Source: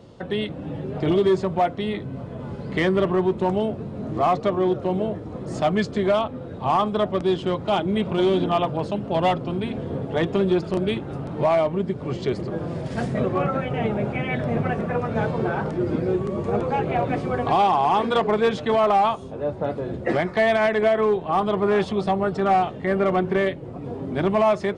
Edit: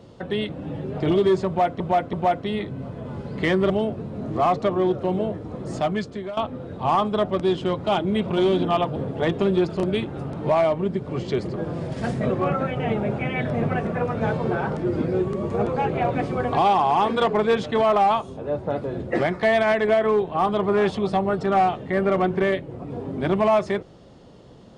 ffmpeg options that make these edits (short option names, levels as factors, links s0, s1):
-filter_complex "[0:a]asplit=6[s0][s1][s2][s3][s4][s5];[s0]atrim=end=1.802[s6];[s1]atrim=start=1.468:end=1.802[s7];[s2]atrim=start=1.468:end=3.042[s8];[s3]atrim=start=3.508:end=6.18,asetpts=PTS-STARTPTS,afade=t=out:st=1.972:d=0.7:silence=0.149624[s9];[s4]atrim=start=6.18:end=8.772,asetpts=PTS-STARTPTS,afade=t=in:d=0.004:c=hsin:silence=0.149624[s10];[s5]atrim=start=9.898[s11];[s6][s7]acrossfade=d=0.004:c1=hsin:c2=hsin[s12];[s12][s8]acrossfade=d=0.004:c1=hsin:c2=hsin[s13];[s9][s10]concat=n=2:v=0:a=1[s14];[s13][s14]acrossfade=d=0.004:c1=hsin:c2=hsin[s15];[s15][s11]acrossfade=d=0.004:c1=hsin:c2=hsin"